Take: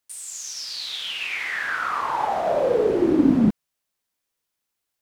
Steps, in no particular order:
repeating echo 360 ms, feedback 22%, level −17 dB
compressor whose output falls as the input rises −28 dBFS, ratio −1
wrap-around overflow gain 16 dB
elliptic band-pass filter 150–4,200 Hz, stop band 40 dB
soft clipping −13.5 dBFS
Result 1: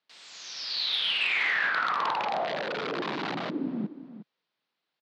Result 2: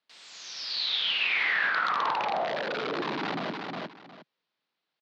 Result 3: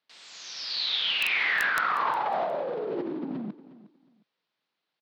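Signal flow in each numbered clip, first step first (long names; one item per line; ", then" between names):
repeating echo, then wrap-around overflow, then compressor whose output falls as the input rises, then elliptic band-pass filter, then soft clipping
wrap-around overflow, then soft clipping, then repeating echo, then compressor whose output falls as the input rises, then elliptic band-pass filter
soft clipping, then compressor whose output falls as the input rises, then elliptic band-pass filter, then wrap-around overflow, then repeating echo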